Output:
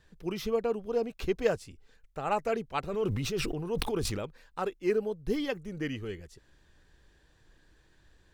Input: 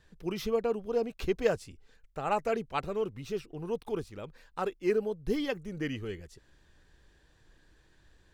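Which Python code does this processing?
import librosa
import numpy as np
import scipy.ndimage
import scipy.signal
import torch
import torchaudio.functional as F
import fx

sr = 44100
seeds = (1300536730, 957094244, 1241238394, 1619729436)

y = fx.sustainer(x, sr, db_per_s=22.0, at=(2.92, 4.25), fade=0.02)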